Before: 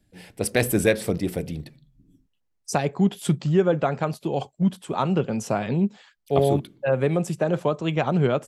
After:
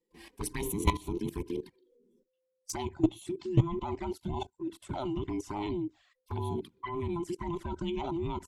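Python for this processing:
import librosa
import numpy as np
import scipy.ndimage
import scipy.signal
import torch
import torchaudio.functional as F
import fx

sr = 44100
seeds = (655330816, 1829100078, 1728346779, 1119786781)

y = fx.band_invert(x, sr, width_hz=500)
y = fx.level_steps(y, sr, step_db=16)
y = fx.clip_asym(y, sr, top_db=-18.5, bottom_db=-11.5)
y = fx.env_flanger(y, sr, rest_ms=5.8, full_db=-29.0)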